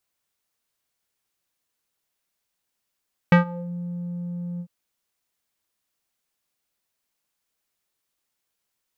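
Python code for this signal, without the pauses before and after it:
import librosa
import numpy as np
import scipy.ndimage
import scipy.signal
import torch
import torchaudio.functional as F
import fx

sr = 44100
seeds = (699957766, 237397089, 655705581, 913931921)

y = fx.sub_voice(sr, note=53, wave='square', cutoff_hz=280.0, q=2.1, env_oct=3.0, env_s=0.39, attack_ms=2.7, decay_s=0.12, sustain_db=-22, release_s=0.07, note_s=1.28, slope=12)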